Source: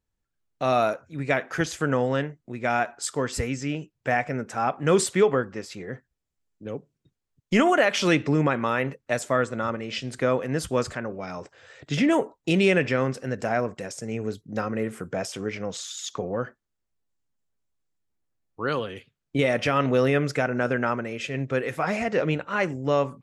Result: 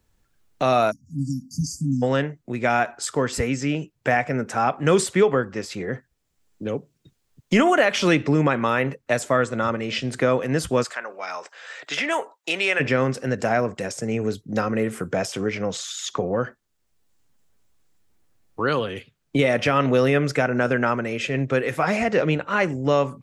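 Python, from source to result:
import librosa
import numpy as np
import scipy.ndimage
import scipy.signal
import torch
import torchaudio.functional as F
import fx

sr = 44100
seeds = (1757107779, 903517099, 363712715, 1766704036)

y = fx.spec_erase(x, sr, start_s=0.91, length_s=1.12, low_hz=300.0, high_hz=4500.0)
y = fx.highpass(y, sr, hz=860.0, slope=12, at=(10.83, 12.79), fade=0.02)
y = fx.band_squash(y, sr, depth_pct=40)
y = y * librosa.db_to_amplitude(3.5)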